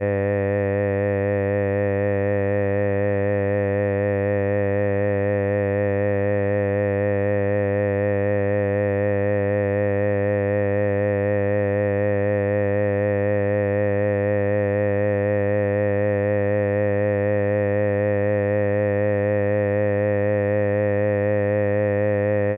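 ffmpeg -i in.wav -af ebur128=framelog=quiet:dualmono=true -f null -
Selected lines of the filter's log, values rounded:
Integrated loudness:
  I:         -18.4 LUFS
  Threshold: -28.4 LUFS
Loudness range:
  LRA:         0.7 LU
  Threshold: -38.4 LUFS
  LRA low:   -18.7 LUFS
  LRA high:  -18.0 LUFS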